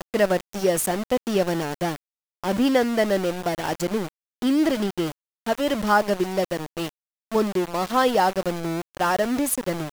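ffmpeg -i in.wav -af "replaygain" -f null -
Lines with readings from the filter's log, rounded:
track_gain = +3.4 dB
track_peak = 0.333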